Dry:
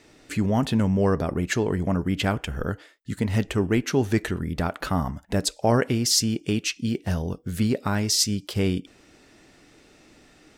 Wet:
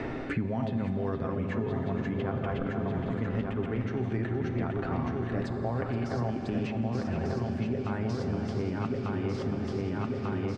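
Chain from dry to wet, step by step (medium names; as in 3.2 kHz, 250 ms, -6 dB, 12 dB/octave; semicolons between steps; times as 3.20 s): backward echo that repeats 597 ms, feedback 61%, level -3.5 dB; low-pass 1.7 kHz 12 dB/octave; comb 7.5 ms, depth 36%; reverse; compression, threshold -30 dBFS, peak gain reduction 15.5 dB; reverse; echo from a far wall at 80 m, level -10 dB; on a send at -6.5 dB: reverberation RT60 4.7 s, pre-delay 4 ms; on the sum: three bands compressed up and down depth 100%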